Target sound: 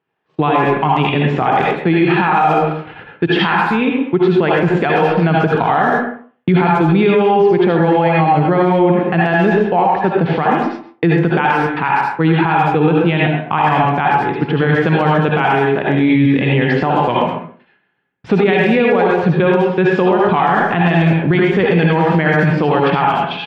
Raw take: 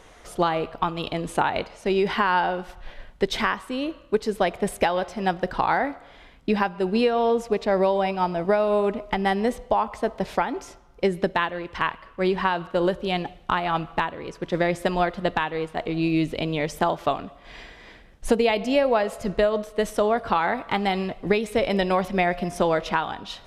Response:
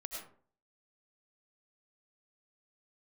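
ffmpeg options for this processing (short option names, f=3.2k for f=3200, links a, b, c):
-filter_complex "[0:a]agate=range=-36dB:threshold=-37dB:ratio=16:detection=peak,asetrate=38170,aresample=44100,atempo=1.15535,highpass=f=110:w=0.5412,highpass=f=110:w=1.3066,equalizer=f=120:t=q:w=4:g=5,equalizer=f=170:t=q:w=4:g=5,equalizer=f=590:t=q:w=4:g=-8,lowpass=f=3.3k:w=0.5412,lowpass=f=3.3k:w=1.3066,asplit=2[a][b];[b]adelay=130,highpass=300,lowpass=3.4k,asoftclip=type=hard:threshold=-15dB,volume=-10dB[c];[a][c]amix=inputs=2:normalize=0[d];[1:a]atrim=start_sample=2205,asetrate=57330,aresample=44100[e];[d][e]afir=irnorm=-1:irlink=0,alimiter=level_in=22.5dB:limit=-1dB:release=50:level=0:latency=1,volume=-3.5dB"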